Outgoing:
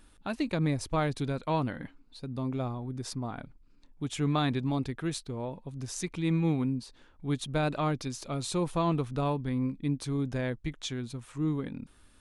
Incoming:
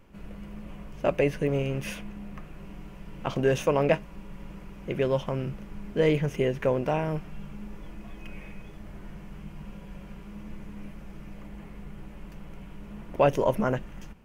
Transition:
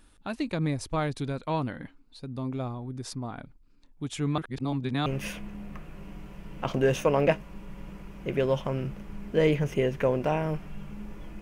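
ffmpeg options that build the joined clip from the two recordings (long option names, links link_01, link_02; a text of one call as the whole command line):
ffmpeg -i cue0.wav -i cue1.wav -filter_complex "[0:a]apad=whole_dur=11.41,atrim=end=11.41,asplit=2[link_01][link_02];[link_01]atrim=end=4.382[link_03];[link_02]atrim=start=4.378:end=5.062,asetpts=PTS-STARTPTS,areverse[link_04];[1:a]atrim=start=1.678:end=8.03[link_05];[link_03][link_04]acrossfade=duration=0.004:curve1=hsin:curve2=hsin[link_06];[link_06][link_05]acrossfade=duration=0.004:curve1=hsin:curve2=hsin" out.wav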